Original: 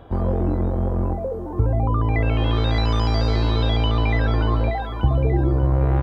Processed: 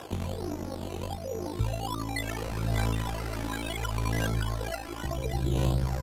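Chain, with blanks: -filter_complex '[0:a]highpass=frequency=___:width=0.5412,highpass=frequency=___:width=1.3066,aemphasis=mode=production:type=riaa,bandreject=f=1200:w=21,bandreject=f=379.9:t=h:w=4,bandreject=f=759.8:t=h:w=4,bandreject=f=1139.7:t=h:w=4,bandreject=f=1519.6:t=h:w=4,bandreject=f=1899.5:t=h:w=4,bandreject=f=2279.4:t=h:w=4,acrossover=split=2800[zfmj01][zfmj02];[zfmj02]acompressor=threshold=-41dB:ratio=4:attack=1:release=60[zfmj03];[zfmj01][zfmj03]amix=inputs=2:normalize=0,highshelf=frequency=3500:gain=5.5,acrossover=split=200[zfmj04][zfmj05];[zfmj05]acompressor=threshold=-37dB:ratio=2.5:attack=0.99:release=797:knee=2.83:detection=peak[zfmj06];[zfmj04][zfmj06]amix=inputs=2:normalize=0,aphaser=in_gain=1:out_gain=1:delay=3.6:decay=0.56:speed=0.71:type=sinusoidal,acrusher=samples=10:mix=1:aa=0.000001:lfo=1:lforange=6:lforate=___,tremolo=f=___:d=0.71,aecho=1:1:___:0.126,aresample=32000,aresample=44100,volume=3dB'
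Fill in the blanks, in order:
55, 55, 1.3, 54, 1164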